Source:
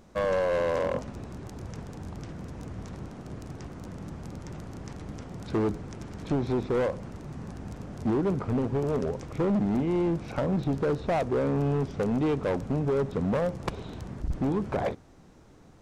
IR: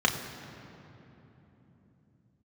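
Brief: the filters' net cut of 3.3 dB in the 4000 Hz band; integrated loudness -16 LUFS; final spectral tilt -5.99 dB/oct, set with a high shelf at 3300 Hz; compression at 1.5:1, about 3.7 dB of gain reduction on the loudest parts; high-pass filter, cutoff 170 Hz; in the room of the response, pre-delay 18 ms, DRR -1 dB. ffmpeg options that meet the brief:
-filter_complex "[0:a]highpass=170,highshelf=f=3.3k:g=4,equalizer=f=4k:t=o:g=-7.5,acompressor=threshold=-33dB:ratio=1.5,asplit=2[a][b];[1:a]atrim=start_sample=2205,adelay=18[c];[b][c]afir=irnorm=-1:irlink=0,volume=-12.5dB[d];[a][d]amix=inputs=2:normalize=0,volume=14.5dB"

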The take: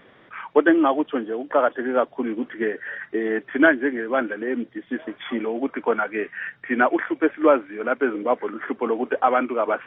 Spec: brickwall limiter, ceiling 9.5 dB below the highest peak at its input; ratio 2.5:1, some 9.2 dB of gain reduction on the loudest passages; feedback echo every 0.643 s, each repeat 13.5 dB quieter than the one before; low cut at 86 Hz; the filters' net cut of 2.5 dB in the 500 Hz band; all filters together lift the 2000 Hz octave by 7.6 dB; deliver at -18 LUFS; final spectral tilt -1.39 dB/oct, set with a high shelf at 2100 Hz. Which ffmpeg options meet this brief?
-af "highpass=86,equalizer=f=500:t=o:g=-4,equalizer=f=2k:t=o:g=8,highshelf=f=2.1k:g=5.5,acompressor=threshold=-21dB:ratio=2.5,alimiter=limit=-17dB:level=0:latency=1,aecho=1:1:643|1286:0.211|0.0444,volume=9.5dB"

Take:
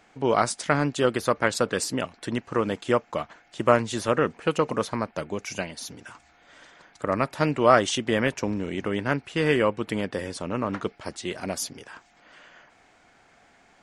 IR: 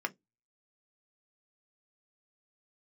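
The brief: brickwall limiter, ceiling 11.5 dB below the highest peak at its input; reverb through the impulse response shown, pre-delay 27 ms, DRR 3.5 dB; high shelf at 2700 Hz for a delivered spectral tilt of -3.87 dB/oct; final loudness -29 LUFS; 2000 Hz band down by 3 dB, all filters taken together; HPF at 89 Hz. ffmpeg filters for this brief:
-filter_complex "[0:a]highpass=89,equalizer=f=2k:t=o:g=-6.5,highshelf=f=2.7k:g=6,alimiter=limit=-15dB:level=0:latency=1,asplit=2[a][b];[1:a]atrim=start_sample=2205,adelay=27[c];[b][c]afir=irnorm=-1:irlink=0,volume=-8dB[d];[a][d]amix=inputs=2:normalize=0,volume=-1dB"

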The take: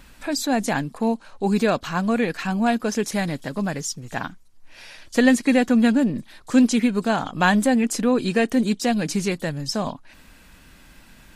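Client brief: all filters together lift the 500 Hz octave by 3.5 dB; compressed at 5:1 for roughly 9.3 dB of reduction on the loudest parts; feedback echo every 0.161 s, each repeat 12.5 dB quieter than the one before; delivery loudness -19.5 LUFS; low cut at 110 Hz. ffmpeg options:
-af "highpass=110,equalizer=f=500:t=o:g=4,acompressor=threshold=-21dB:ratio=5,aecho=1:1:161|322|483:0.237|0.0569|0.0137,volume=6.5dB"

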